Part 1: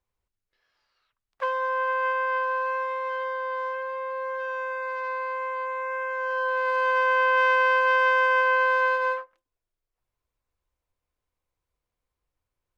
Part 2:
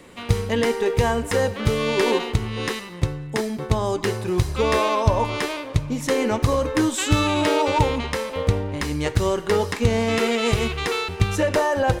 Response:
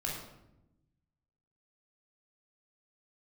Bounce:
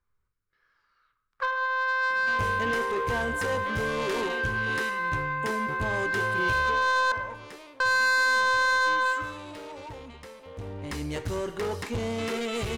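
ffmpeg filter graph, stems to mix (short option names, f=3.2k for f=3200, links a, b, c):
-filter_complex "[0:a]firequalizer=gain_entry='entry(420,0);entry(690,-12);entry(1200,7);entry(2700,-7)':delay=0.05:min_phase=1,volume=-0.5dB,asplit=3[a][b][c];[a]atrim=end=7.12,asetpts=PTS-STARTPTS,afade=t=out:st=7.116:d=0.004:c=hsin[d];[b]atrim=start=7.12:end=7.8,asetpts=PTS-STARTPTS,volume=0[e];[c]atrim=start=7.8,asetpts=PTS-STARTPTS,afade=t=in:d=0.004:c=hsin[f];[d][e][f]concat=n=3:v=0:a=1,asplit=2[g][h];[h]volume=-6dB[i];[1:a]asoftclip=type=tanh:threshold=-19dB,adelay=2100,volume=7.5dB,afade=t=out:st=6.61:d=0.22:silence=0.223872,afade=t=in:st=10.51:d=0.45:silence=0.251189[j];[2:a]atrim=start_sample=2205[k];[i][k]afir=irnorm=-1:irlink=0[l];[g][j][l]amix=inputs=3:normalize=0,asoftclip=type=tanh:threshold=-20.5dB"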